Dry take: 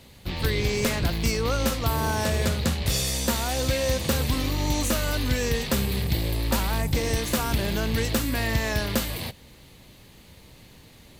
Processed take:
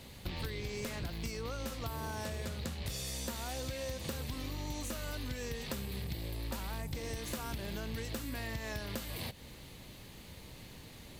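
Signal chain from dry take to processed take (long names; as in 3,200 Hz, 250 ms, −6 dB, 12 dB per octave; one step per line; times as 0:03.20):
downward compressor 12 to 1, threshold −35 dBFS, peak gain reduction 16.5 dB
surface crackle 340 per second −57 dBFS
level −1 dB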